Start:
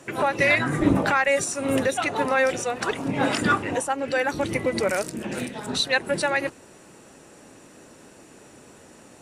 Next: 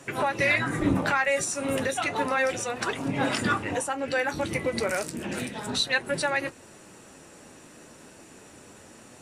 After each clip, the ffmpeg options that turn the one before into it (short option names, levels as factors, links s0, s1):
-filter_complex "[0:a]equalizer=f=420:w=0.52:g=-3,asplit=2[s0][s1];[s1]acompressor=threshold=0.0316:ratio=6,volume=0.794[s2];[s0][s2]amix=inputs=2:normalize=0,flanger=delay=7.1:depth=6.8:regen=-51:speed=0.32:shape=triangular"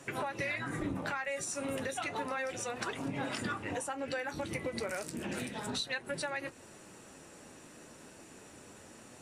-af "acompressor=threshold=0.0316:ratio=4,volume=0.631"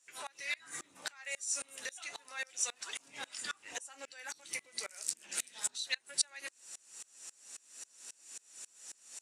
-af "bandpass=f=7100:t=q:w=1.4:csg=0,aeval=exprs='val(0)*pow(10,-28*if(lt(mod(-3.7*n/s,1),2*abs(-3.7)/1000),1-mod(-3.7*n/s,1)/(2*abs(-3.7)/1000),(mod(-3.7*n/s,1)-2*abs(-3.7)/1000)/(1-2*abs(-3.7)/1000))/20)':c=same,volume=7.08"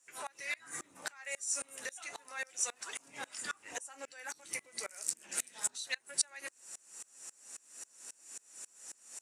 -af "equalizer=f=3700:w=1:g=-8,volume=1.41"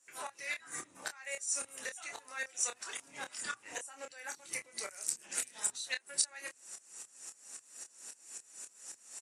-filter_complex "[0:a]bandreject=f=60:t=h:w=6,bandreject=f=120:t=h:w=6,asplit=2[s0][s1];[s1]adelay=27,volume=0.447[s2];[s0][s2]amix=inputs=2:normalize=0" -ar 44100 -c:a libmp3lame -b:a 56k